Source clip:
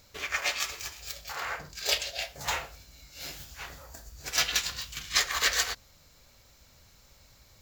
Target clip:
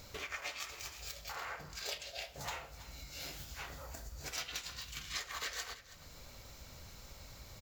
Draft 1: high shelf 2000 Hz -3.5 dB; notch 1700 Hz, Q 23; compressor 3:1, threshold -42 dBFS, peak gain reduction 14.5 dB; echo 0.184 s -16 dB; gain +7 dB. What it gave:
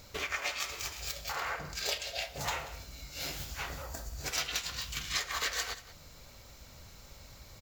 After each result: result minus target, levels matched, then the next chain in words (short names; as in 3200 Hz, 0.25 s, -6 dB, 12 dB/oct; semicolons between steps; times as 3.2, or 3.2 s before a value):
echo 0.141 s early; compressor: peak gain reduction -7.5 dB
high shelf 2000 Hz -3.5 dB; notch 1700 Hz, Q 23; compressor 3:1, threshold -42 dBFS, peak gain reduction 14.5 dB; echo 0.325 s -16 dB; gain +7 dB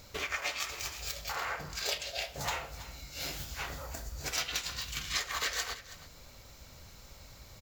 compressor: peak gain reduction -7.5 dB
high shelf 2000 Hz -3.5 dB; notch 1700 Hz, Q 23; compressor 3:1, threshold -53 dBFS, peak gain reduction 21.5 dB; echo 0.325 s -16 dB; gain +7 dB